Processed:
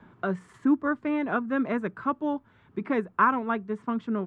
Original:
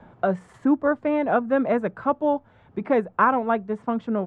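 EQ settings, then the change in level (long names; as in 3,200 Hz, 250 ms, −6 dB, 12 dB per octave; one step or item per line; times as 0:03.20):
low-shelf EQ 89 Hz −9 dB
flat-topped bell 640 Hz −9.5 dB 1 octave
−1.5 dB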